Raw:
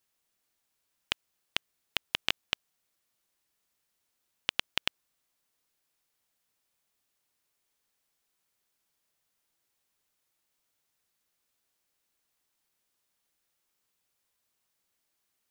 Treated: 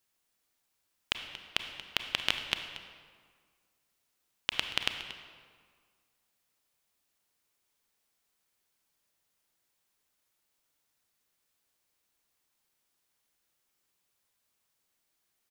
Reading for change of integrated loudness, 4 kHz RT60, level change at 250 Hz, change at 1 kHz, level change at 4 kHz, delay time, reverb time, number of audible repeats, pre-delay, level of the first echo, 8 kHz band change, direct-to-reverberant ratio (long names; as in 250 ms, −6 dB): +0.5 dB, 1.2 s, +1.0 dB, +1.0 dB, +1.0 dB, 232 ms, 1.8 s, 1, 28 ms, −15.5 dB, +0.5 dB, 6.0 dB